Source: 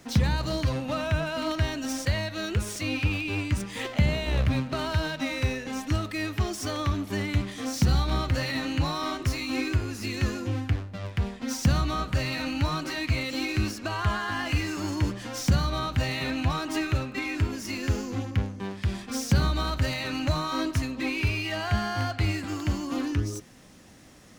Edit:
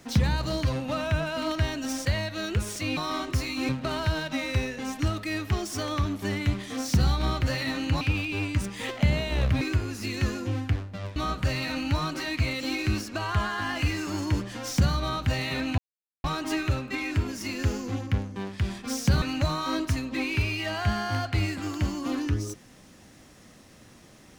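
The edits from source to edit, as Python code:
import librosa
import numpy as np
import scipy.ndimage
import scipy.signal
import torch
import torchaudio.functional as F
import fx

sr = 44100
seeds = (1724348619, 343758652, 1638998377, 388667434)

y = fx.edit(x, sr, fx.swap(start_s=2.97, length_s=1.6, other_s=8.89, other_length_s=0.72),
    fx.cut(start_s=11.16, length_s=0.7),
    fx.insert_silence(at_s=16.48, length_s=0.46),
    fx.cut(start_s=19.46, length_s=0.62), tone=tone)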